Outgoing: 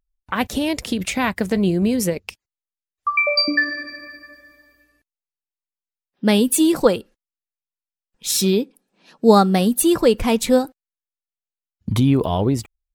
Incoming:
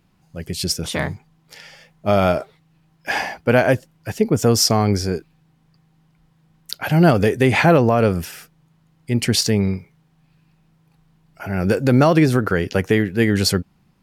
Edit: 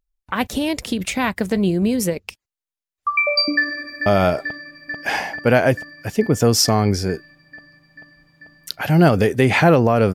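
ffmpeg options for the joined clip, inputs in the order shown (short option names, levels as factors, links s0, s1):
-filter_complex "[0:a]apad=whole_dur=10.14,atrim=end=10.14,atrim=end=4.062[s0];[1:a]atrim=start=2.078:end=8.16[s1];[s0][s1]acrossfade=d=0.004:c1=hsin:c2=hsin,asplit=2[s2][s3];[s3]afade=t=in:st=3.56:d=0.01,afade=t=out:st=4.06:d=0.01,aecho=0:1:440|880|1320|1760|2200|2640|3080|3520|3960|4400|4840|5280:0.446684|0.357347|0.285877|0.228702|0.182962|0.146369|0.117095|0.0936763|0.0749411|0.0599529|0.0479623|0.0383698[s4];[s2][s4]amix=inputs=2:normalize=0"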